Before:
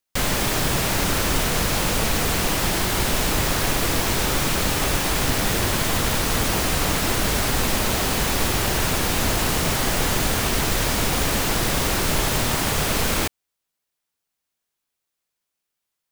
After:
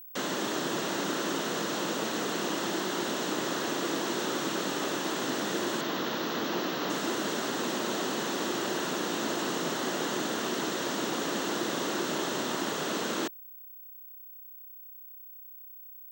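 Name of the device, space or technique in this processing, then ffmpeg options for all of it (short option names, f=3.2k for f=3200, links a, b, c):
old television with a line whistle: -filter_complex "[0:a]asettb=1/sr,asplit=3[a][b][c];[a]atrim=end=5.814[d];[b]atrim=start=5.81:end=6.9,asetpts=PTS-STARTPTS,afade=t=in:d=0.004:c=qsin,afade=t=out:st=1.086:d=0.004:c=qsin,lowpass=f=5.7k:w=0.5412,lowpass=f=5.7k:w=1.3066[e];[c]atrim=start=6.896[f];[d][e]acrossfade=d=0.004:c1=hsin:c2=qsin[g];[g][f]acrossfade=d=0.004:c1=qsin:c2=hsin,highpass=f=200:w=0.5412,highpass=f=200:w=1.3066,equalizer=f=340:t=q:w=4:g=6,equalizer=f=770:t=q:w=4:g=-3,equalizer=f=2.3k:t=q:w=4:g=-10,equalizer=f=4.9k:t=q:w=4:g=-7,lowpass=f=6.9k:w=0.5412,lowpass=f=6.9k:w=1.3066,aeval=exprs='val(0)+0.0126*sin(2*PI*15734*n/s)':c=same,volume=-6.5dB"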